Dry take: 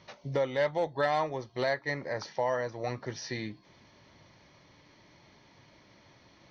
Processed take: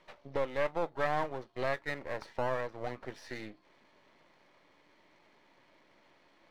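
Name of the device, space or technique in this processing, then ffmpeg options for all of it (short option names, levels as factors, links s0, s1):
crystal radio: -af "highpass=290,lowpass=3000,aeval=exprs='if(lt(val(0),0),0.251*val(0),val(0))':c=same"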